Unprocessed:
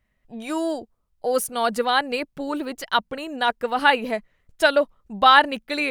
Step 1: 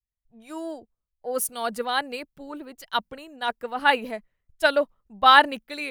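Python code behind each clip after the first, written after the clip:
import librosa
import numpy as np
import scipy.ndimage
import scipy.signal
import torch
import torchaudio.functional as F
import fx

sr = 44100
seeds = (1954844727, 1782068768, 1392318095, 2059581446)

y = fx.high_shelf(x, sr, hz=12000.0, db=9.0)
y = fx.band_widen(y, sr, depth_pct=70)
y = y * librosa.db_to_amplitude(-5.5)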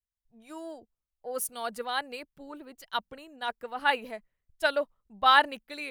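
y = fx.dynamic_eq(x, sr, hz=240.0, q=0.87, threshold_db=-38.0, ratio=4.0, max_db=-4)
y = y * librosa.db_to_amplitude(-5.5)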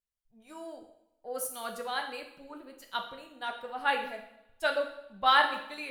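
y = fx.wow_flutter(x, sr, seeds[0], rate_hz=2.1, depth_cents=23.0)
y = fx.rev_double_slope(y, sr, seeds[1], early_s=0.72, late_s=1.8, knee_db=-24, drr_db=2.5)
y = y * librosa.db_to_amplitude(-4.0)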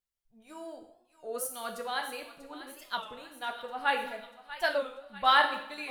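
y = fx.echo_thinned(x, sr, ms=641, feedback_pct=65, hz=990.0, wet_db=-13.0)
y = fx.record_warp(y, sr, rpm=33.33, depth_cents=160.0)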